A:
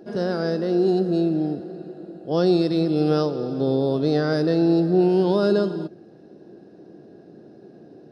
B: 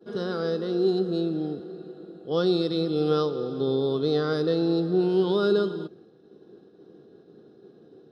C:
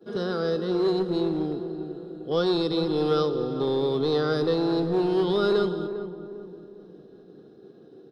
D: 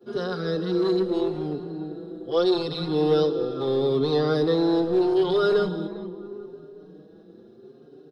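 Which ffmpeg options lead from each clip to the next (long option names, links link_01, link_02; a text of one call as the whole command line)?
ffmpeg -i in.wav -af "agate=range=-33dB:threshold=-43dB:ratio=3:detection=peak,superequalizer=7b=1.78:8b=0.631:10b=2.24:13b=2.82,volume=-6dB" out.wav
ffmpeg -i in.wav -filter_complex "[0:a]acrossover=split=440[link_01][link_02];[link_01]asoftclip=type=hard:threshold=-27dB[link_03];[link_03][link_02]amix=inputs=2:normalize=0,asplit=2[link_04][link_05];[link_05]adelay=401,lowpass=frequency=980:poles=1,volume=-9.5dB,asplit=2[link_06][link_07];[link_07]adelay=401,lowpass=frequency=980:poles=1,volume=0.46,asplit=2[link_08][link_09];[link_09]adelay=401,lowpass=frequency=980:poles=1,volume=0.46,asplit=2[link_10][link_11];[link_11]adelay=401,lowpass=frequency=980:poles=1,volume=0.46,asplit=2[link_12][link_13];[link_13]adelay=401,lowpass=frequency=980:poles=1,volume=0.46[link_14];[link_04][link_06][link_08][link_10][link_12][link_14]amix=inputs=6:normalize=0,volume=1.5dB" out.wav
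ffmpeg -i in.wav -filter_complex "[0:a]asplit=2[link_01][link_02];[link_02]adelay=5.3,afreqshift=0.78[link_03];[link_01][link_03]amix=inputs=2:normalize=1,volume=3.5dB" out.wav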